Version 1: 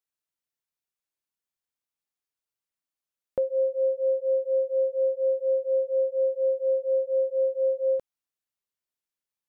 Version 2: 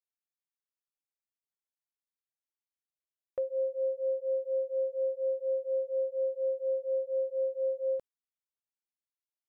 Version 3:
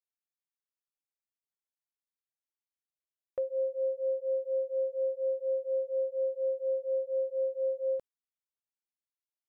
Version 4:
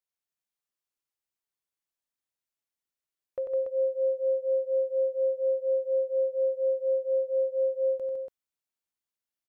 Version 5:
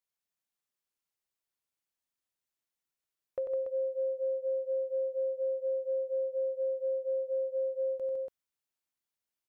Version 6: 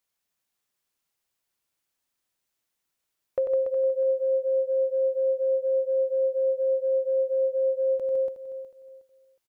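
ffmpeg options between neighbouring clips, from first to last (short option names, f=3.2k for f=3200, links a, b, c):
-af "agate=range=-8dB:threshold=-37dB:ratio=16:detection=peak,volume=-6.5dB"
-af anull
-af "aecho=1:1:93.29|157.4|285.7:0.501|0.562|0.562"
-af "acompressor=threshold=-30dB:ratio=6"
-af "aecho=1:1:365|730|1095:0.251|0.0678|0.0183,volume=8.5dB"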